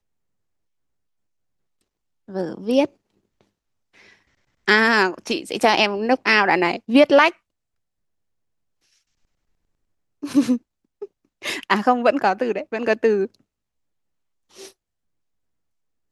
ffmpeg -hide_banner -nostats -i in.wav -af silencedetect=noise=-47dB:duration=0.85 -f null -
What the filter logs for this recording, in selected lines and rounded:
silence_start: 0.00
silence_end: 2.28 | silence_duration: 2.28
silence_start: 7.37
silence_end: 10.22 | silence_duration: 2.86
silence_start: 13.40
silence_end: 14.51 | silence_duration: 1.11
silence_start: 14.72
silence_end: 16.12 | silence_duration: 1.40